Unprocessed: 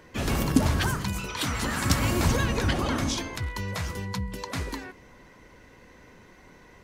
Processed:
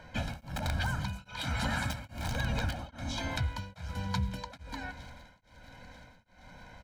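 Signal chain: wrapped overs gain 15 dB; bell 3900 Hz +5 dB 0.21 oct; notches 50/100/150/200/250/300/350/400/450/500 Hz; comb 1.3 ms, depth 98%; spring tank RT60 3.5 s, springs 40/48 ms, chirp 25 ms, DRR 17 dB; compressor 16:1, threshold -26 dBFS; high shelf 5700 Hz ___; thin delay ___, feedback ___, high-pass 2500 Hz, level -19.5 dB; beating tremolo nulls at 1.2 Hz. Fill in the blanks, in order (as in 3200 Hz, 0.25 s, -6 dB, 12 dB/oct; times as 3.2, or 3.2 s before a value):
-12 dB, 0.47 s, 78%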